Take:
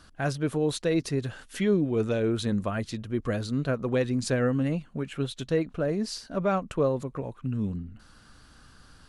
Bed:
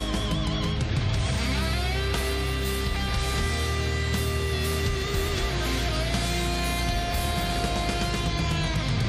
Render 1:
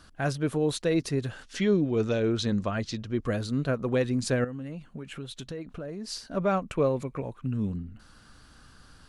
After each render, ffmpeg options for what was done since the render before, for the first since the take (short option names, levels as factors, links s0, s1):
-filter_complex "[0:a]asettb=1/sr,asplit=3[s0][s1][s2];[s0]atrim=end=1.434[s3];[s1]atrim=start=1.43:end=3.22,asetpts=PTS-STARTPTS,afade=t=in:d=0.004:c=qsin,afade=t=out:st=1.786:d=0.004:c=qsin,lowpass=f=5700:t=q:w=1.8[s4];[s2]atrim=start=3.216[s5];[s3][s4]acrossfade=d=0.004:c1=hsin:c2=qsin[s6];[s6][s5]acrossfade=d=0.004:c1=qsin:c2=hsin,asettb=1/sr,asplit=3[s7][s8][s9];[s7]atrim=end=4.444[s10];[s8]atrim=start=4.44:end=6.1,asetpts=PTS-STARTPTS,afade=t=in:d=0.004:c=qsin,afade=t=out:st=1.656:d=0.004:c=qsin,acompressor=threshold=0.0178:ratio=4:attack=3.2:release=140:knee=1:detection=peak[s11];[s9]atrim=start=6.096[s12];[s10][s11]acrossfade=d=0.004:c1=hsin:c2=qsin[s13];[s13][s12]acrossfade=d=0.004:c1=qsin:c2=hsin,asettb=1/sr,asplit=3[s14][s15][s16];[s14]atrim=end=6.714[s17];[s15]atrim=start=6.71:end=7.22,asetpts=PTS-STARTPTS,afade=t=in:d=0.004:c=qsin,afade=t=out:st=0.506:d=0.004:c=qsin,equalizer=f=2300:w=6.1:g=12.5[s18];[s16]atrim=start=7.216[s19];[s17][s18]acrossfade=d=0.004:c1=hsin:c2=qsin[s20];[s20][s19]acrossfade=d=0.004:c1=qsin:c2=hsin"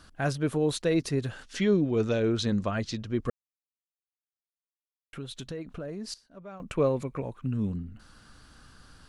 -filter_complex "[0:a]asplit=5[s0][s1][s2][s3][s4];[s0]atrim=end=3.3,asetpts=PTS-STARTPTS,afade=t=out:st=3.296:d=0.004:c=hsin[s5];[s1]atrim=start=3.3:end=5.13,asetpts=PTS-STARTPTS,volume=0[s6];[s2]atrim=start=5.13:end=6.14,asetpts=PTS-STARTPTS,afade=t=in:d=0.004:c=hsin,afade=t=out:st=0.88:d=0.13:c=log:silence=0.11885[s7];[s3]atrim=start=6.14:end=6.6,asetpts=PTS-STARTPTS,volume=0.119[s8];[s4]atrim=start=6.6,asetpts=PTS-STARTPTS,afade=t=in:d=0.13:c=log:silence=0.11885[s9];[s5][s6][s7][s8][s9]concat=n=5:v=0:a=1"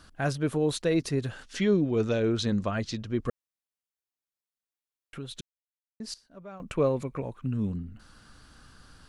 -filter_complex "[0:a]asplit=3[s0][s1][s2];[s0]atrim=end=5.41,asetpts=PTS-STARTPTS,afade=t=out:st=5.406:d=0.004:c=hsin[s3];[s1]atrim=start=5.41:end=6,asetpts=PTS-STARTPTS,volume=0[s4];[s2]atrim=start=6,asetpts=PTS-STARTPTS,afade=t=in:d=0.004:c=hsin[s5];[s3][s4][s5]concat=n=3:v=0:a=1"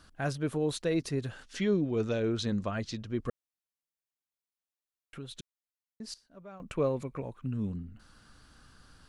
-af "volume=0.631"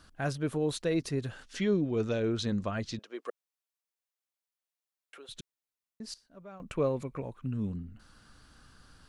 -filter_complex "[0:a]asettb=1/sr,asplit=3[s0][s1][s2];[s0]atrim=end=2.994[s3];[s1]atrim=start=2.99:end=5.29,asetpts=PTS-STARTPTS,afade=t=in:d=0.004:c=qsin,afade=t=out:st=2.296:d=0.004:c=qsin,highpass=f=410:w=0.5412,highpass=f=410:w=1.3066[s4];[s2]atrim=start=5.286[s5];[s3][s4]acrossfade=d=0.004:c1=hsin:c2=qsin[s6];[s6][s5]acrossfade=d=0.004:c1=qsin:c2=hsin"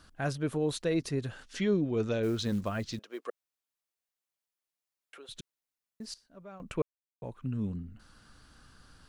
-filter_complex "[0:a]asettb=1/sr,asplit=3[s0][s1][s2];[s0]atrim=end=2.234[s3];[s1]atrim=start=2.23:end=3.26,asetpts=PTS-STARTPTS,afade=t=in:d=0.004:c=qsin,afade=t=out:st=1.026:d=0.004:c=qsin,acrusher=bits=7:mode=log:mix=0:aa=0.000001[s4];[s2]atrim=start=3.256[s5];[s3][s4]acrossfade=d=0.004:c1=hsin:c2=qsin[s6];[s6][s5]acrossfade=d=0.004:c1=qsin:c2=hsin,asettb=1/sr,asplit=3[s7][s8][s9];[s7]atrim=end=5.264[s10];[s8]atrim=start=5.26:end=6.27,asetpts=PTS-STARTPTS,afade=t=in:d=0.004:c=qsin,afade=t=out:st=1.006:d=0.004:c=qsin,acrusher=bits=9:mode=log:mix=0:aa=0.000001[s11];[s9]atrim=start=6.266[s12];[s10][s11]acrossfade=d=0.004:c1=hsin:c2=qsin[s13];[s13][s12]acrossfade=d=0.004:c1=qsin:c2=hsin,asplit=3[s14][s15][s16];[s14]atrim=end=6.82,asetpts=PTS-STARTPTS,afade=t=out:st=6.816:d=0.004:c=hsin[s17];[s15]atrim=start=6.82:end=7.22,asetpts=PTS-STARTPTS,volume=0[s18];[s16]atrim=start=7.22,asetpts=PTS-STARTPTS,afade=t=in:d=0.004:c=hsin[s19];[s17][s18][s19]concat=n=3:v=0:a=1"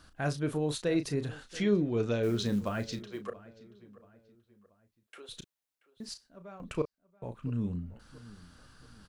-filter_complex "[0:a]asplit=2[s0][s1];[s1]adelay=34,volume=0.316[s2];[s0][s2]amix=inputs=2:normalize=0,asplit=2[s3][s4];[s4]adelay=681,lowpass=f=2600:p=1,volume=0.112,asplit=2[s5][s6];[s6]adelay=681,lowpass=f=2600:p=1,volume=0.41,asplit=2[s7][s8];[s8]adelay=681,lowpass=f=2600:p=1,volume=0.41[s9];[s3][s5][s7][s9]amix=inputs=4:normalize=0"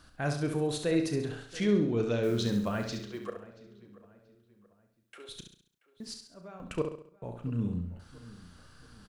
-af "aecho=1:1:68|136|204|272|340:0.447|0.192|0.0826|0.0355|0.0153"